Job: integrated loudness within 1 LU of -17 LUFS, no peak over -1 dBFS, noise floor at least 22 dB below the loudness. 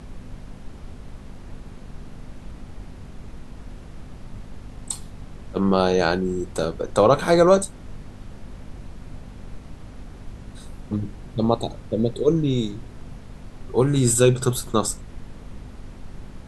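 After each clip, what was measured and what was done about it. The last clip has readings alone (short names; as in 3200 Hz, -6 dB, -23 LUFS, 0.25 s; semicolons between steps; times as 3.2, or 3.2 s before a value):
hum 50 Hz; harmonics up to 250 Hz; hum level -45 dBFS; noise floor -42 dBFS; noise floor target -44 dBFS; loudness -21.5 LUFS; peak -2.5 dBFS; loudness target -17.0 LUFS
-> de-hum 50 Hz, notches 5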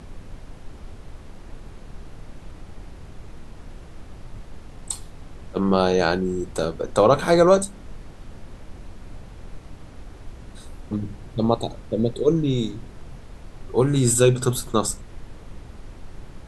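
hum none; noise floor -43 dBFS; noise floor target -44 dBFS
-> noise print and reduce 6 dB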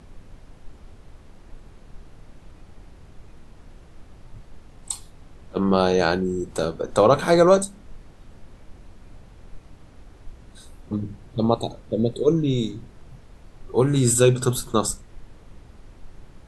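noise floor -49 dBFS; loudness -21.5 LUFS; peak -2.5 dBFS; loudness target -17.0 LUFS
-> gain +4.5 dB; limiter -1 dBFS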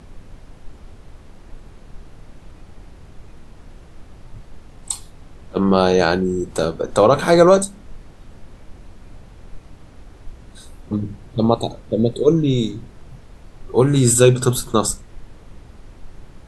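loudness -17.5 LUFS; peak -1.0 dBFS; noise floor -44 dBFS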